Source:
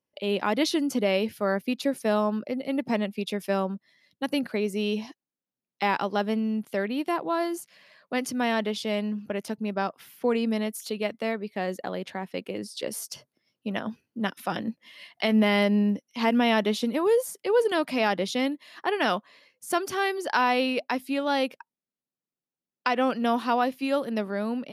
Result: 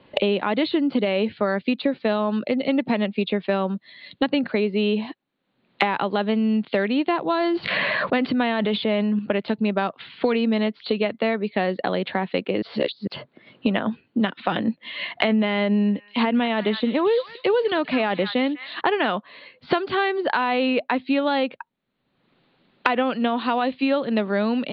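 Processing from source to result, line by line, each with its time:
7.4–9.19 sustainer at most 20 dB/s
12.62–13.07 reverse
15.68–18.81 delay with a stepping band-pass 0.199 s, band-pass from 1600 Hz, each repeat 1.4 oct, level -10 dB
whole clip: steep low-pass 4300 Hz 96 dB/oct; limiter -16.5 dBFS; three-band squash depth 100%; gain +4.5 dB

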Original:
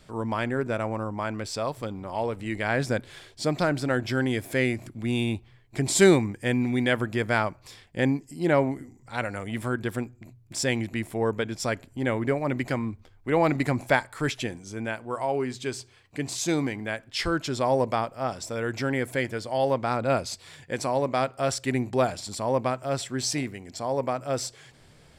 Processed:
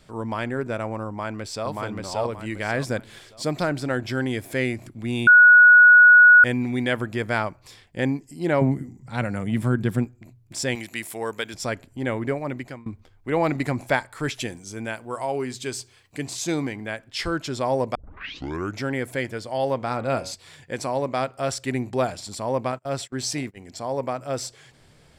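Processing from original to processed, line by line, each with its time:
1.07–1.68 echo throw 0.58 s, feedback 30%, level -1 dB
2.33–3.66 high shelf 11000 Hz +6 dB
5.27–6.44 bleep 1460 Hz -7.5 dBFS
8.61–10.05 bell 160 Hz +14 dB 1.3 oct
10.75–11.54 tilt +3.5 dB/oct
12.15–12.86 fade out equal-power, to -23 dB
14.34–16.26 high shelf 5100 Hz +8.5 dB
17.95 tape start 0.85 s
19.75–20.32 de-hum 92.88 Hz, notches 36
22.72–23.57 gate -37 dBFS, range -28 dB

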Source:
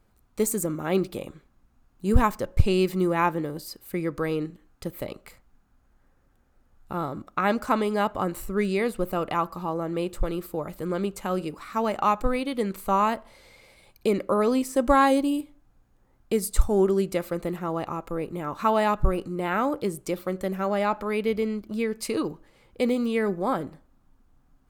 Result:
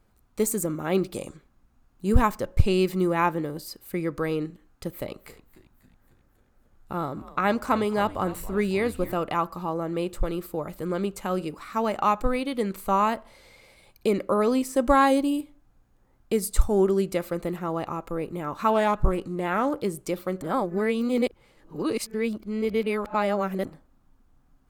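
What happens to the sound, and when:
1.14–1.36 spectral gain 4200–9800 Hz +11 dB
4.91–9.14 frequency-shifting echo 0.272 s, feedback 59%, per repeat -120 Hz, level -17 dB
18.7–19.74 Doppler distortion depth 0.4 ms
20.42–23.65 reverse

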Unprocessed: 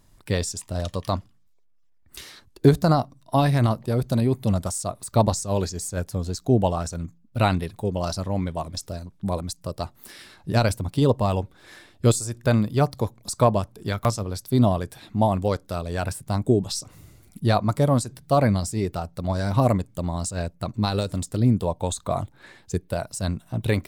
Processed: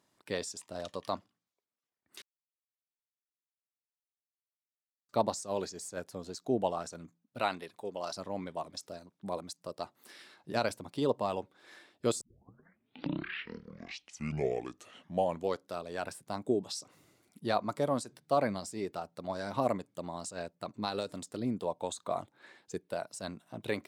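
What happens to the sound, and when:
2.22–5.09 mute
7.4–8.16 low shelf 280 Hz -10 dB
12.21 tape start 3.48 s
whole clip: HPF 280 Hz 12 dB/oct; high shelf 9700 Hz -11 dB; gain -7.5 dB

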